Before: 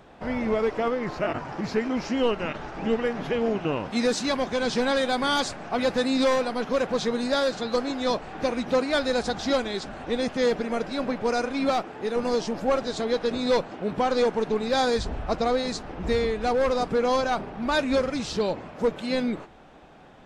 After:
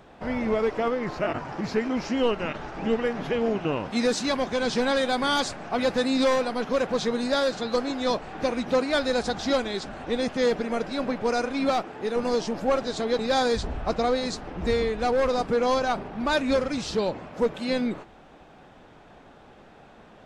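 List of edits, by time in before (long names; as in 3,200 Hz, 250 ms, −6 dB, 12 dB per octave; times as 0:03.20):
0:13.19–0:14.61: remove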